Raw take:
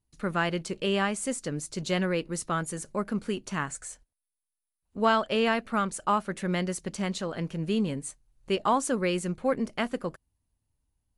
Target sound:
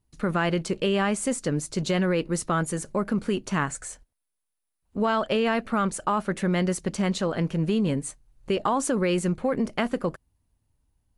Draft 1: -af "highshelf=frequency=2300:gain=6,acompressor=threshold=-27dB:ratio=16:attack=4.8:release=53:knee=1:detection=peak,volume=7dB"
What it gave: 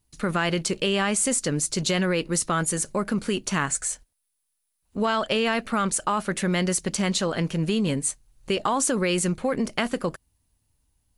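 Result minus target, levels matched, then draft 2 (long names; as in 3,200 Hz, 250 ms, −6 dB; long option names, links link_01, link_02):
4,000 Hz band +4.5 dB
-af "highshelf=frequency=2300:gain=-4.5,acompressor=threshold=-27dB:ratio=16:attack=4.8:release=53:knee=1:detection=peak,volume=7dB"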